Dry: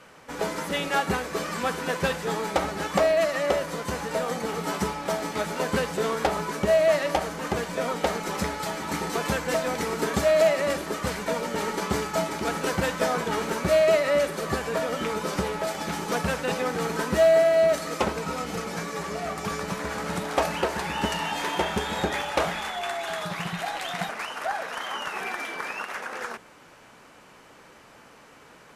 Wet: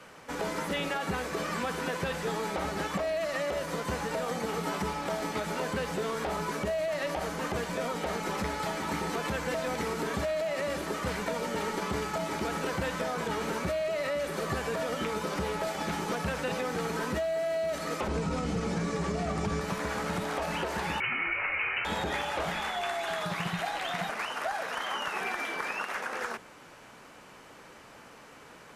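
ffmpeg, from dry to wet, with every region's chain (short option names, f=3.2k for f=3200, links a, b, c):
-filter_complex "[0:a]asettb=1/sr,asplit=3[a][b][c];[a]atrim=end=18.084[d];[b]atrim=start=18.08:end=19.61,asetpts=PTS-STARTPTS,afade=t=in:d=0.004:c=qsin,afade=t=out:st=1.526:d=0.004:c=qsin,lowpass=f=9.5k:w=0.5412,lowpass=f=9.5k:w=1.3066,lowshelf=f=410:g=12[e];[c]atrim=start=19.606[f];[d][e]acrossfade=d=0.004:c1=hsin:c2=qsin[g];[g][f]acrossfade=d=0.004:c1=qsin:c2=hsin,asettb=1/sr,asplit=3[h][i][j];[h]atrim=end=21.004[k];[i]atrim=start=21:end=21.85,asetpts=PTS-STARTPTS,afade=t=in:d=0.004:c=qsin,afade=t=out:st=0.846:d=0.004:c=qsin,lowshelf=f=470:t=q:w=1.5:g=-8,lowpass=f=2.6k:t=q:w=0.5098,lowpass=f=2.6k:t=q:w=0.6013,lowpass=f=2.6k:t=q:w=0.9,lowpass=f=2.6k:t=q:w=2.563,afreqshift=-3100[l];[j]atrim=start=21.846[m];[k][l]acrossfade=d=0.004:c1=hsin:c2=qsin[n];[n][m]acrossfade=d=0.004:c1=qsin:c2=hsin,acrossover=split=3400[o][p];[p]acompressor=threshold=-43dB:ratio=4:attack=1:release=60[q];[o][q]amix=inputs=2:normalize=0,alimiter=limit=-19.5dB:level=0:latency=1:release=41,acrossover=split=120|3000[r][s][t];[s]acompressor=threshold=-29dB:ratio=6[u];[r][u][t]amix=inputs=3:normalize=0"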